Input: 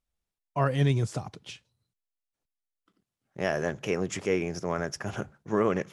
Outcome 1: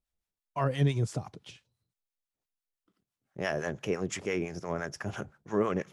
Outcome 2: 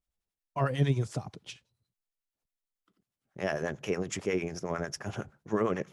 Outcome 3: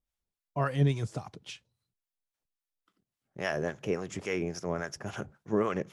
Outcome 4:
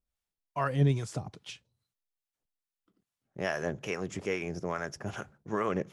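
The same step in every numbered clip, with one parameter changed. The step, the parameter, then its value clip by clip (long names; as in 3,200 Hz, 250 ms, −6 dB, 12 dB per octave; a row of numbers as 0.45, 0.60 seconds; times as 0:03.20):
two-band tremolo in antiphase, speed: 5.9, 11, 3.6, 2.4 Hertz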